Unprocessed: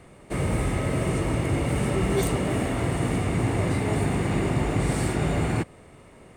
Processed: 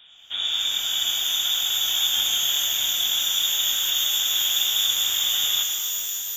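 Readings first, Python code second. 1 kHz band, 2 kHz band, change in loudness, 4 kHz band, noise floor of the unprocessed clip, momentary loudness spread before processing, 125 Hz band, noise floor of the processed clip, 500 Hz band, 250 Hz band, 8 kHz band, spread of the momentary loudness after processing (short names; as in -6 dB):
-9.0 dB, -0.5 dB, +5.5 dB, +23.0 dB, -50 dBFS, 2 LU, under -30 dB, -34 dBFS, -22.5 dB, under -25 dB, +15.0 dB, 4 LU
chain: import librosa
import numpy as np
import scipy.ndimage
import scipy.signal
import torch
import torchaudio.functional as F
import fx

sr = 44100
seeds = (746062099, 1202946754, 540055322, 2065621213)

p1 = fx.sample_hold(x, sr, seeds[0], rate_hz=2300.0, jitter_pct=0)
p2 = x + F.gain(torch.from_numpy(p1), -5.5).numpy()
p3 = fx.freq_invert(p2, sr, carrier_hz=3600)
p4 = fx.rev_shimmer(p3, sr, seeds[1], rt60_s=3.7, semitones=12, shimmer_db=-2, drr_db=2.5)
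y = F.gain(torch.from_numpy(p4), -5.5).numpy()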